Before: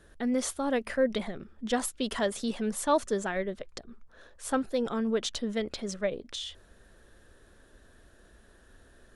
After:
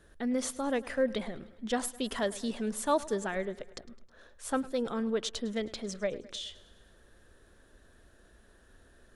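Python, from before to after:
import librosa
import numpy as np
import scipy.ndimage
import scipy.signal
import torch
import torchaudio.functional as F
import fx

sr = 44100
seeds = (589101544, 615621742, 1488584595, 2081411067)

y = fx.echo_feedback(x, sr, ms=105, feedback_pct=60, wet_db=-19.5)
y = F.gain(torch.from_numpy(y), -2.5).numpy()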